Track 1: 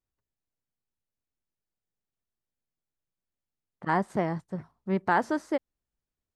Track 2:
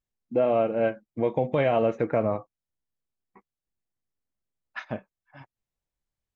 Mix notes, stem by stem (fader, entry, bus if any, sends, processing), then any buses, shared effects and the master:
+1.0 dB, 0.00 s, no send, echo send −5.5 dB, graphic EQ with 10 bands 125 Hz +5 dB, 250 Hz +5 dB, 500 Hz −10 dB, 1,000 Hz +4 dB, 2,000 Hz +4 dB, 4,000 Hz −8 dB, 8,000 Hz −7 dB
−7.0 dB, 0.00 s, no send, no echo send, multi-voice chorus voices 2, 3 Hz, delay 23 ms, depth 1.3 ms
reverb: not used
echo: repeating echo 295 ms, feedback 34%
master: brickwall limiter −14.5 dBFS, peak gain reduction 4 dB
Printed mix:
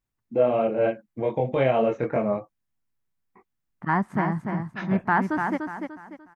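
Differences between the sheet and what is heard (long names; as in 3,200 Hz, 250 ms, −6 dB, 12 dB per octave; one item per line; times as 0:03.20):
stem 2 −7.0 dB → +3.5 dB
master: missing brickwall limiter −14.5 dBFS, peak gain reduction 4 dB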